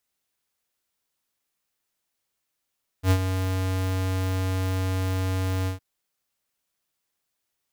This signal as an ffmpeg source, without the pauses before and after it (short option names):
-f lavfi -i "aevalsrc='0.141*(2*lt(mod(93.8*t,1),0.5)-1)':d=2.762:s=44100,afade=t=in:d=0.076,afade=t=out:st=0.076:d=0.071:silence=0.376,afade=t=out:st=2.64:d=0.122"